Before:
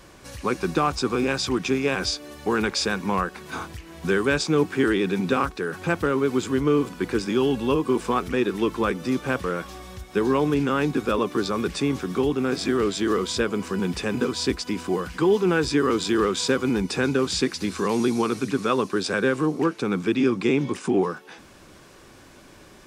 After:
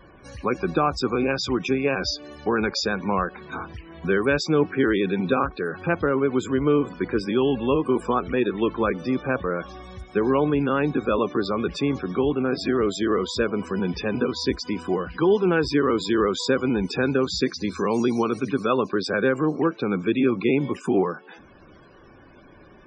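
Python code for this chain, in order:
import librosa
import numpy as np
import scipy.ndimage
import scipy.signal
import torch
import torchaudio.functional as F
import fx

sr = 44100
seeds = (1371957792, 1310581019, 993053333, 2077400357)

y = fx.dynamic_eq(x, sr, hz=600.0, q=3.1, threshold_db=-40.0, ratio=4.0, max_db=4)
y = fx.spec_topn(y, sr, count=64)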